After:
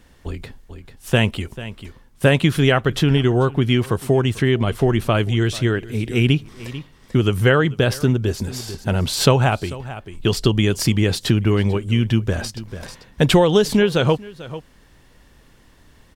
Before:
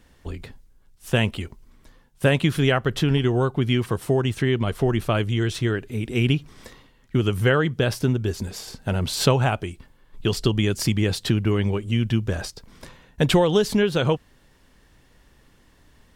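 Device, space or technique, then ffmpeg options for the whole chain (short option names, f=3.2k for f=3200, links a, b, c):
ducked delay: -filter_complex "[0:a]asplit=3[a][b][c];[b]adelay=442,volume=-9dB[d];[c]apad=whole_len=731861[e];[d][e]sidechaincompress=threshold=-32dB:ratio=5:attack=16:release=578[f];[a][f]amix=inputs=2:normalize=0,volume=4dB"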